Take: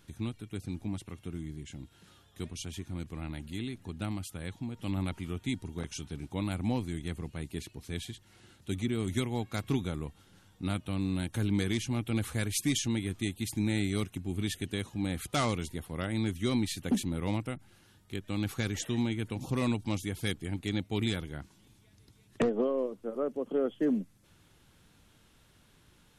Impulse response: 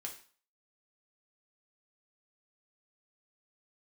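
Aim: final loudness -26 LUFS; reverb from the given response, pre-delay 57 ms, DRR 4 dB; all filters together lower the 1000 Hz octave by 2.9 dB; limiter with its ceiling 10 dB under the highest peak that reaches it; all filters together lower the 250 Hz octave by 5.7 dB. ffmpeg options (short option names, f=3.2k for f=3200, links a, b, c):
-filter_complex "[0:a]equalizer=f=250:t=o:g=-7,equalizer=f=1k:t=o:g=-3.5,alimiter=level_in=5dB:limit=-24dB:level=0:latency=1,volume=-5dB,asplit=2[a][b];[1:a]atrim=start_sample=2205,adelay=57[c];[b][c]afir=irnorm=-1:irlink=0,volume=-1.5dB[d];[a][d]amix=inputs=2:normalize=0,volume=13dB"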